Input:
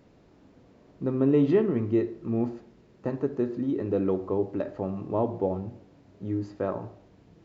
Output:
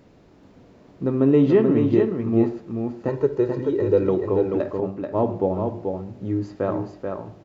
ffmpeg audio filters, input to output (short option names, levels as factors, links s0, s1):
-filter_complex "[0:a]asettb=1/sr,asplit=3[s0][s1][s2];[s0]atrim=end=3.084[s3];[s1]atrim=start=3.08:end=4.09,asetpts=PTS-STARTPTS,afade=t=in:d=0.004:c=qsin,afade=t=out:st=1.006:d=0.004:c=qsin,aecho=1:1:2.1:0.75,atrim=end_sample=44541[s4];[s2]atrim=start=4.086[s5];[s3][s4]acrossfade=d=0.004:c1=hsin:c2=qsin[s6];[s6][s5]acrossfade=d=0.004:c1=qsin:c2=hsin,asettb=1/sr,asplit=3[s7][s8][s9];[s7]atrim=end=4.804[s10];[s8]atrim=start=4.8:end=5.25,asetpts=PTS-STARTPTS,afade=t=in:d=0.004:c=qsin,afade=t=out:st=0.446:d=0.004:c=qsin,agate=range=0.0224:threshold=0.0631:ratio=3:detection=peak[s11];[s9]atrim=start=5.246[s12];[s10][s11]acrossfade=d=0.004:c1=hsin:c2=qsin[s13];[s13][s12]acrossfade=d=0.004:c1=qsin:c2=hsin,aecho=1:1:434:0.562,volume=1.78"